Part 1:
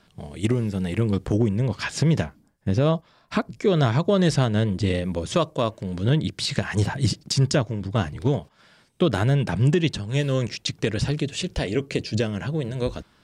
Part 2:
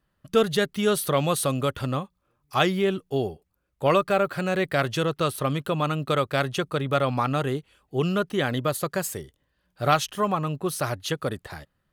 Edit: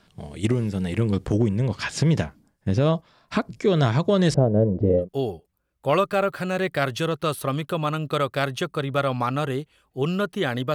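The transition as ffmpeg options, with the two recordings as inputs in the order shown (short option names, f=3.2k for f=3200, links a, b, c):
-filter_complex "[0:a]asettb=1/sr,asplit=3[a][b][c];[a]atrim=end=4.344[d];[b]atrim=start=4.34:end=5.09,asetpts=PTS-STARTPTS,afade=t=in:d=0.004:c=qsin,afade=t=out:st=0.746:d=0.004:c=qsin,lowpass=f=550:t=q:w=2.9[e];[c]atrim=start=5.086[f];[d][e]acrossfade=d=0.004:c1=hsin:c2=qsin[g];[g][f]acrossfade=d=0.004:c1=qsin:c2=hsin,apad=whole_dur=10.74,atrim=end=10.74,atrim=end=5.09,asetpts=PTS-STARTPTS[h];[1:a]atrim=start=2.94:end=8.71,asetpts=PTS-STARTPTS[i];[h][i]acrossfade=d=0.12:c1=tri:c2=tri"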